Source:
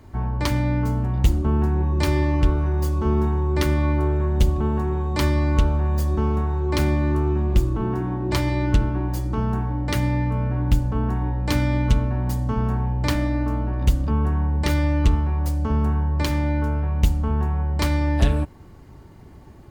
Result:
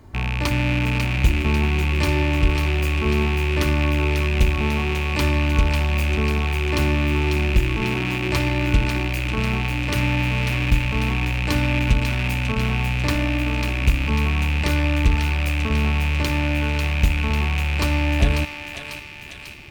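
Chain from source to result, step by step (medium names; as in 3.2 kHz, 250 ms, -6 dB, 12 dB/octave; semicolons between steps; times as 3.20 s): rattle on loud lows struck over -26 dBFS, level -15 dBFS; thinning echo 545 ms, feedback 66%, high-pass 1.2 kHz, level -5 dB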